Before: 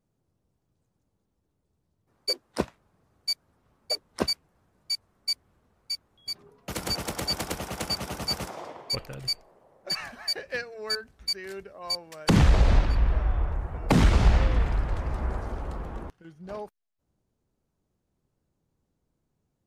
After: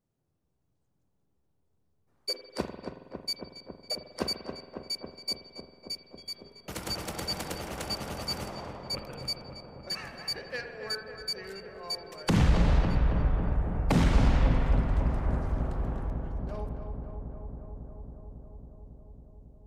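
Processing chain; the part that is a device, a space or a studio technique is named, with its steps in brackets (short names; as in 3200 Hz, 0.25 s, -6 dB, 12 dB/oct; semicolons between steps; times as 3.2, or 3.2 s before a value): dub delay into a spring reverb (darkening echo 0.275 s, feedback 84%, low-pass 1900 Hz, level -7 dB; spring tank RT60 1.3 s, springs 47 ms, chirp 35 ms, DRR 7 dB); gain -5 dB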